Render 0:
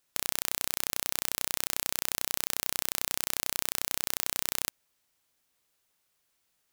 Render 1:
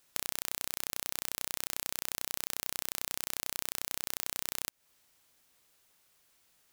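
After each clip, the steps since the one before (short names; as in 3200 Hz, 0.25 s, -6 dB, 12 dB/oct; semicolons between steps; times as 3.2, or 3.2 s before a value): compressor 6:1, threshold -35 dBFS, peak gain reduction 11.5 dB; gain +6.5 dB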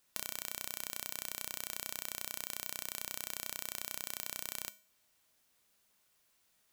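resonator 210 Hz, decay 0.44 s, harmonics odd, mix 70%; gain +5 dB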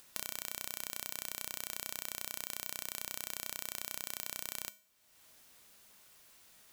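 upward compressor, threshold -49 dBFS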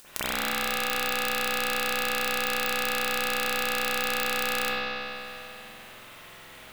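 reverb RT60 3.0 s, pre-delay 46 ms, DRR -15 dB; gain +6.5 dB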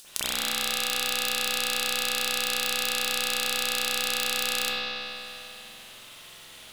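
band shelf 5900 Hz +10 dB 2.3 oct; gain -4.5 dB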